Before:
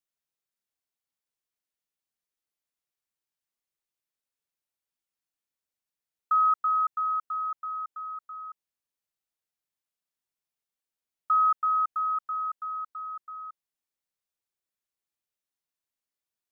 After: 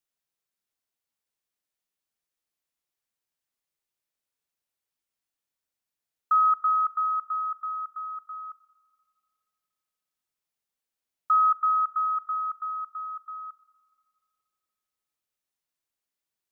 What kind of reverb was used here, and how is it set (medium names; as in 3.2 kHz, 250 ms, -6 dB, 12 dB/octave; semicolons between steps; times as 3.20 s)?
spring tank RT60 2.2 s, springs 41/58 ms, chirp 75 ms, DRR 16.5 dB; trim +2 dB